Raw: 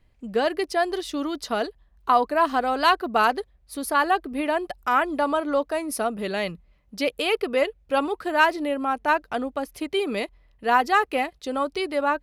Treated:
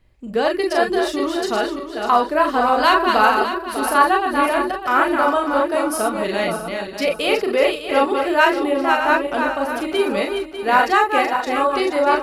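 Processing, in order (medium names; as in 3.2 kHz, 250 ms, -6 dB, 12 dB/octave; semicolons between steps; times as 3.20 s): backward echo that repeats 299 ms, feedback 53%, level -5 dB; on a send: reverberation, pre-delay 31 ms, DRR 2 dB; on the sum: trim +2.5 dB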